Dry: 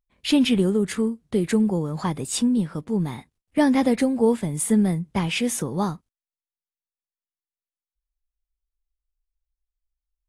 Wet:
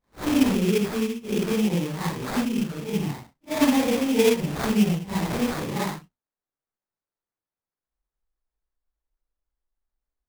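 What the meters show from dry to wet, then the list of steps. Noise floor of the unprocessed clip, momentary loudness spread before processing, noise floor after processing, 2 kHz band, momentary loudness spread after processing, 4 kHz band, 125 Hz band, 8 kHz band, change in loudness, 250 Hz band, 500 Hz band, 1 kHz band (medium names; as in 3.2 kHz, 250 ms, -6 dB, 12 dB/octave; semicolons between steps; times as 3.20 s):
under -85 dBFS, 8 LU, under -85 dBFS, +1.0 dB, 9 LU, -1.5 dB, -1.0 dB, -4.5 dB, -1.5 dB, -2.0 dB, -0.5 dB, -0.5 dB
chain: phase randomisation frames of 200 ms; sample-rate reducer 2.9 kHz, jitter 20%; trim -1.5 dB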